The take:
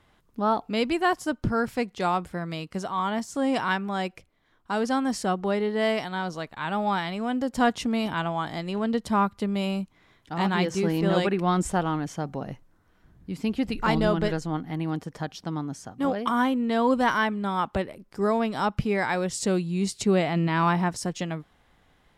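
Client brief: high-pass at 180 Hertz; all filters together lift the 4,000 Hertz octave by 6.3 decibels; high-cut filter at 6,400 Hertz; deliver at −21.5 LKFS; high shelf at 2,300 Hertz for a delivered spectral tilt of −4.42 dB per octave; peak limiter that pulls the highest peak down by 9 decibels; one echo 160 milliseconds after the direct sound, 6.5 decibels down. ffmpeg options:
ffmpeg -i in.wav -af "highpass=180,lowpass=6400,highshelf=frequency=2300:gain=6,equalizer=frequency=4000:width_type=o:gain=3.5,alimiter=limit=-15dB:level=0:latency=1,aecho=1:1:160:0.473,volume=5dB" out.wav

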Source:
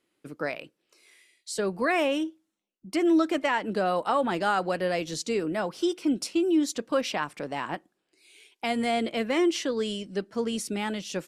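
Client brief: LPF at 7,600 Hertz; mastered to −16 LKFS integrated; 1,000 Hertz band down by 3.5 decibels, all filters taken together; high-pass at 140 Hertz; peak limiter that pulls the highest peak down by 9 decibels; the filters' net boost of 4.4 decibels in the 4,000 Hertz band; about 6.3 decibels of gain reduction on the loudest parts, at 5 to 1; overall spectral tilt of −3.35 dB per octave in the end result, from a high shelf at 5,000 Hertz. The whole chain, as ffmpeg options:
ffmpeg -i in.wav -af "highpass=140,lowpass=7600,equalizer=frequency=1000:width_type=o:gain=-5.5,equalizer=frequency=4000:width_type=o:gain=4.5,highshelf=frequency=5000:gain=5,acompressor=threshold=-27dB:ratio=5,volume=18.5dB,alimiter=limit=-6.5dB:level=0:latency=1" out.wav

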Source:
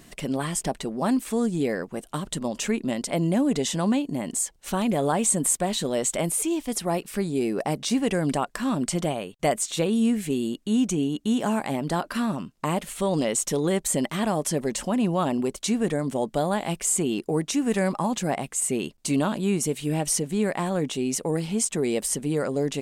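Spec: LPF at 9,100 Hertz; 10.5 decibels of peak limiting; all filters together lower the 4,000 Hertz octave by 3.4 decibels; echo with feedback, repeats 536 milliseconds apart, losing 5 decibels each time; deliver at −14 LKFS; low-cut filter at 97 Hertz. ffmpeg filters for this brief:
ffmpeg -i in.wav -af "highpass=97,lowpass=9100,equalizer=frequency=4000:width_type=o:gain=-4.5,alimiter=limit=-22dB:level=0:latency=1,aecho=1:1:536|1072|1608|2144|2680|3216|3752:0.562|0.315|0.176|0.0988|0.0553|0.031|0.0173,volume=15.5dB" out.wav

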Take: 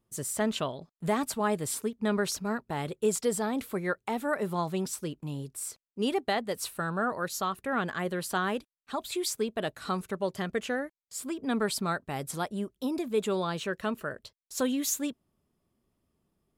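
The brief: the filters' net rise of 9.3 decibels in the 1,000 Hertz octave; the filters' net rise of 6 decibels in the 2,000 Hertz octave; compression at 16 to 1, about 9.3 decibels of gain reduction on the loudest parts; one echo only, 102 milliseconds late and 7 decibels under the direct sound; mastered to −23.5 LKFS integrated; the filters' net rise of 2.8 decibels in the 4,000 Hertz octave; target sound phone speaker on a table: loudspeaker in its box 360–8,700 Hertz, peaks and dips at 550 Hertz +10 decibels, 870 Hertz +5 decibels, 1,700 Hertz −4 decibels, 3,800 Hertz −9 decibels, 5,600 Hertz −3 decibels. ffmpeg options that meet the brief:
ffmpeg -i in.wav -af "equalizer=frequency=1000:width_type=o:gain=6,equalizer=frequency=2000:width_type=o:gain=7.5,equalizer=frequency=4000:width_type=o:gain=6,acompressor=threshold=-28dB:ratio=16,highpass=frequency=360:width=0.5412,highpass=frequency=360:width=1.3066,equalizer=frequency=550:width_type=q:width=4:gain=10,equalizer=frequency=870:width_type=q:width=4:gain=5,equalizer=frequency=1700:width_type=q:width=4:gain=-4,equalizer=frequency=3800:width_type=q:width=4:gain=-9,equalizer=frequency=5600:width_type=q:width=4:gain=-3,lowpass=frequency=8700:width=0.5412,lowpass=frequency=8700:width=1.3066,aecho=1:1:102:0.447,volume=8.5dB" out.wav

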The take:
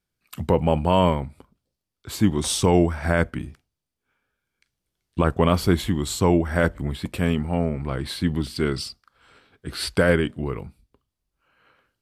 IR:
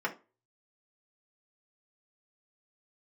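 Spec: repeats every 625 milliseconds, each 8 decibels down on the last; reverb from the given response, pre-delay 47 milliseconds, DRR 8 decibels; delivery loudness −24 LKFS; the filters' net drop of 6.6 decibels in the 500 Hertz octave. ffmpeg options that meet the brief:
-filter_complex "[0:a]equalizer=frequency=500:width_type=o:gain=-8.5,aecho=1:1:625|1250|1875|2500|3125:0.398|0.159|0.0637|0.0255|0.0102,asplit=2[link_01][link_02];[1:a]atrim=start_sample=2205,adelay=47[link_03];[link_02][link_03]afir=irnorm=-1:irlink=0,volume=-15.5dB[link_04];[link_01][link_04]amix=inputs=2:normalize=0,volume=0.5dB"

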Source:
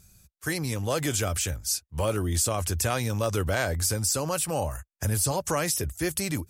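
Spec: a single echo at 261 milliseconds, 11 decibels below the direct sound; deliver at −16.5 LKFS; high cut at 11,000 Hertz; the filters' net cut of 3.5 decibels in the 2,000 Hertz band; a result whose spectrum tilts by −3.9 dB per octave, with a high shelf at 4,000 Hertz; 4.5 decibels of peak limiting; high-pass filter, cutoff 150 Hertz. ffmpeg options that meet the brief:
ffmpeg -i in.wav -af "highpass=150,lowpass=11000,equalizer=frequency=2000:width_type=o:gain=-3.5,highshelf=frequency=4000:gain=-5.5,alimiter=limit=-20dB:level=0:latency=1,aecho=1:1:261:0.282,volume=15dB" out.wav

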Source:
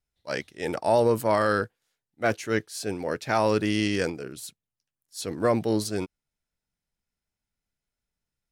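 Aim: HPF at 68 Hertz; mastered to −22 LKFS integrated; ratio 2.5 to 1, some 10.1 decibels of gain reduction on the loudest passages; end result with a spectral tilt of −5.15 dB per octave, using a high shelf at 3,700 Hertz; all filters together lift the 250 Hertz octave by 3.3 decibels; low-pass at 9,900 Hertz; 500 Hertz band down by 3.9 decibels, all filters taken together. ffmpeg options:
ffmpeg -i in.wav -af "highpass=68,lowpass=9900,equalizer=frequency=250:width_type=o:gain=6.5,equalizer=frequency=500:width_type=o:gain=-6.5,highshelf=frequency=3700:gain=-3.5,acompressor=threshold=-34dB:ratio=2.5,volume=14dB" out.wav

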